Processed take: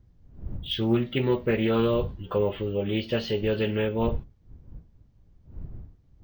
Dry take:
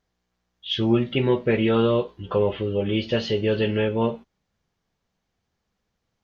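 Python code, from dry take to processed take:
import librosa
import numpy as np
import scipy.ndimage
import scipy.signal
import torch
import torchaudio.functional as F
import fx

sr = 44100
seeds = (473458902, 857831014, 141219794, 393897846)

y = fx.dmg_wind(x, sr, seeds[0], corner_hz=84.0, level_db=-36.0)
y = np.repeat(scipy.signal.resample_poly(y, 1, 2), 2)[:len(y)]
y = fx.doppler_dist(y, sr, depth_ms=0.18)
y = F.gain(torch.from_numpy(y), -3.5).numpy()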